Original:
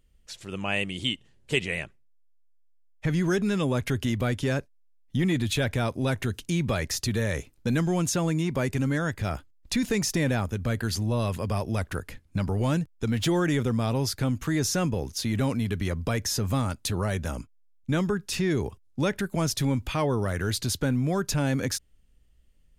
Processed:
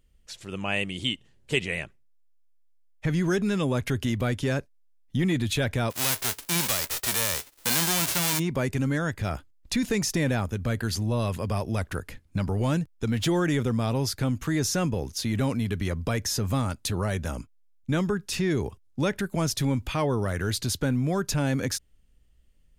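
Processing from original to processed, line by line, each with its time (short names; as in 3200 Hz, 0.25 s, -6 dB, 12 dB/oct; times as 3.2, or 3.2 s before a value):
5.9–8.38 spectral whitening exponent 0.1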